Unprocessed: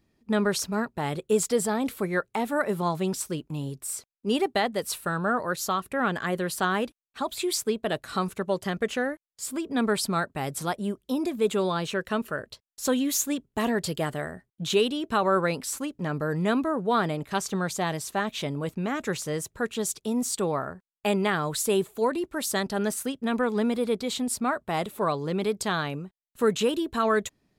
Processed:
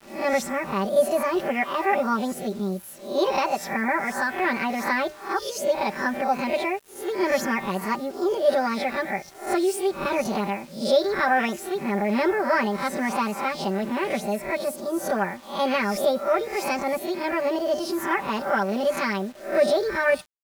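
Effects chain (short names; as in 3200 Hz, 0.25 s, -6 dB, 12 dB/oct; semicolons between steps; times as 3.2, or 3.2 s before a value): spectral swells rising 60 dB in 0.57 s; LPF 1700 Hz 6 dB/oct; notch 1200 Hz, Q 24; comb 6.9 ms, depth 90%; de-hum 224.4 Hz, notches 28; bit-crush 8-bit; speed mistake 33 rpm record played at 45 rpm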